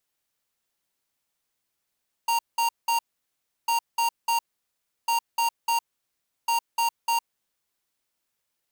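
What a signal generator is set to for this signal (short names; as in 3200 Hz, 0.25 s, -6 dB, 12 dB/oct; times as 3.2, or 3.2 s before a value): beep pattern square 928 Hz, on 0.11 s, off 0.19 s, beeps 3, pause 0.69 s, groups 4, -23 dBFS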